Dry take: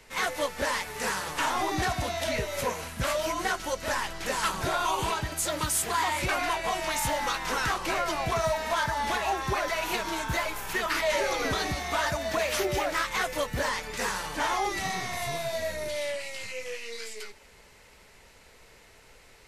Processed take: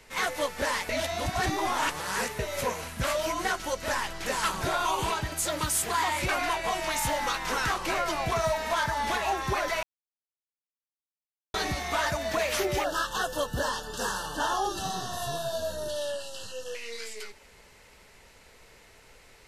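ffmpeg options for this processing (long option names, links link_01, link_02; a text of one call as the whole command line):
ffmpeg -i in.wav -filter_complex "[0:a]asettb=1/sr,asplit=3[link_01][link_02][link_03];[link_01]atrim=end=12.844[link_04];[link_02]atrim=start=12.84:end=16.75,asetpts=PTS-STARTPTS,afade=type=in:duration=0.004:curve=qsin,afade=type=out:start_time=3.906:duration=0.004:curve=qsin,asuperstop=centerf=2200:order=20:qfactor=2.5[link_05];[link_03]atrim=start=16.746[link_06];[link_04][link_05]acrossfade=duration=0.004:curve1=hsin:curve2=qsin[link_07];[link_07][link_06]acrossfade=duration=0.004:curve1=qsin:curve2=hsin,asplit=5[link_08][link_09][link_10][link_11][link_12];[link_08]atrim=end=0.892[link_13];[link_09]atrim=start=0.888:end=2.392,asetpts=PTS-STARTPTS,areverse[link_14];[link_10]atrim=start=2.388:end=9.83,asetpts=PTS-STARTPTS,afade=type=out:start_time=7.438:duration=0.004:curve=hsin[link_15];[link_11]atrim=start=9.83:end=11.54,asetpts=PTS-STARTPTS,volume=0[link_16];[link_12]atrim=start=11.54,asetpts=PTS-STARTPTS,afade=type=in:duration=0.004:curve=hsin[link_17];[link_13][link_14]acrossfade=duration=0.004:curve1=hsin:curve2=hsin[link_18];[link_15][link_16][link_17]concat=n=3:v=0:a=1[link_19];[link_18][link_19]acrossfade=duration=0.004:curve1=hsin:curve2=hsin" out.wav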